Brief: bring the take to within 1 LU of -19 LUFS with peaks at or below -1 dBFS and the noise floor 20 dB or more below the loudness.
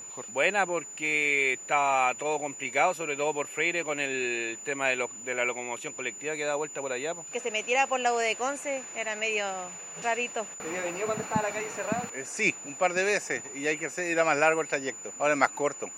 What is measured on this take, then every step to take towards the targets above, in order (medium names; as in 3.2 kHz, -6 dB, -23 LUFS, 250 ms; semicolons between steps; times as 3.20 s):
steady tone 7 kHz; tone level -40 dBFS; loudness -28.5 LUFS; peak level -7.0 dBFS; loudness target -19.0 LUFS
-> band-stop 7 kHz, Q 30; trim +9.5 dB; peak limiter -1 dBFS